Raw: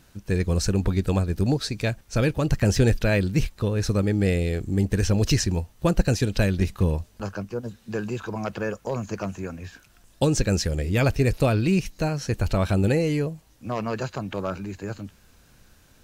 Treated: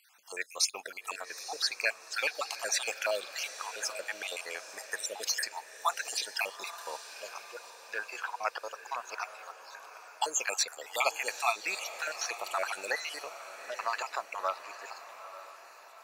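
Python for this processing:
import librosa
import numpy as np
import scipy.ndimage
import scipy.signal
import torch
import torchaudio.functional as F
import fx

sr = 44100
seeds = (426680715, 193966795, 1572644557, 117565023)

p1 = fx.spec_dropout(x, sr, seeds[0], share_pct=55)
p2 = scipy.signal.sosfilt(scipy.signal.butter(4, 760.0, 'highpass', fs=sr, output='sos'), p1)
p3 = fx.notch(p2, sr, hz=3100.0, q=19.0)
p4 = np.sign(p3) * np.maximum(np.abs(p3) - 10.0 ** (-55.0 / 20.0), 0.0)
p5 = p3 + (p4 * 10.0 ** (-5.5 / 20.0))
y = fx.echo_diffused(p5, sr, ms=862, feedback_pct=48, wet_db=-12.0)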